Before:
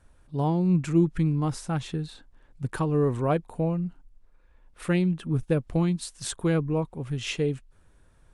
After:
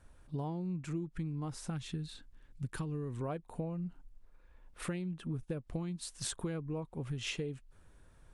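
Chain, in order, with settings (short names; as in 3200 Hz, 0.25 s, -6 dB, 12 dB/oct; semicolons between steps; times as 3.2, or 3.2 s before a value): 1.7–3.21 bell 710 Hz -10 dB 1.9 oct; compressor 12:1, threshold -33 dBFS, peak gain reduction 17.5 dB; gain -1.5 dB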